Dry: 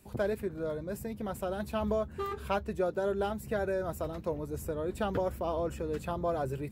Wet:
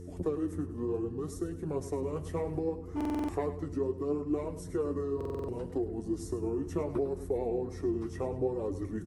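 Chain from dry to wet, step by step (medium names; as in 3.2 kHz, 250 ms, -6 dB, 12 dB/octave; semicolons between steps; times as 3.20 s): graphic EQ 250/500/4000 Hz -4/+8/-6 dB; compression, threshold -29 dBFS, peak gain reduction 9 dB; mains buzz 120 Hz, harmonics 5, -44 dBFS -4 dB/octave; flange 0.92 Hz, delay 1.4 ms, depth 9.2 ms, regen +42%; feedback delay 76 ms, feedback 37%, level -13 dB; speed mistake 45 rpm record played at 33 rpm; buffer glitch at 2.96/5.16 s, samples 2048, times 6; trim +3.5 dB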